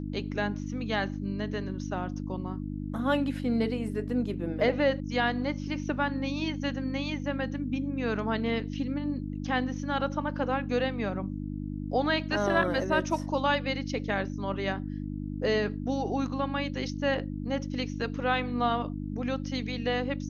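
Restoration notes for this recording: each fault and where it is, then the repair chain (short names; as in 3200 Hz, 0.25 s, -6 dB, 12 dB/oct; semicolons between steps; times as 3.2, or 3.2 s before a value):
hum 50 Hz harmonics 6 -35 dBFS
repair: de-hum 50 Hz, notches 6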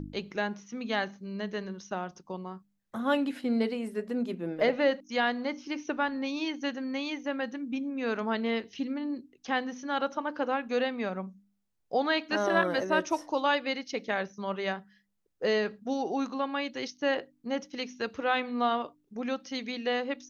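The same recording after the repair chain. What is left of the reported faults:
none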